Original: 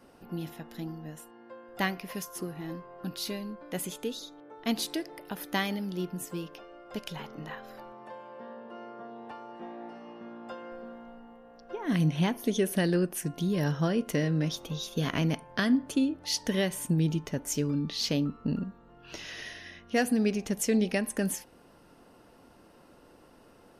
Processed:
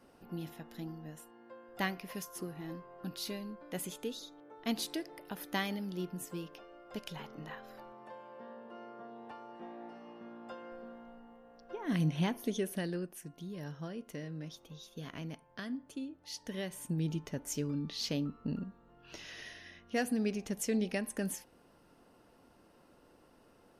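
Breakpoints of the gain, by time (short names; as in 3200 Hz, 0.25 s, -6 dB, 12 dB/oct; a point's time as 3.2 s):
12.36 s -5 dB
13.29 s -15 dB
16.2 s -15 dB
17.15 s -6.5 dB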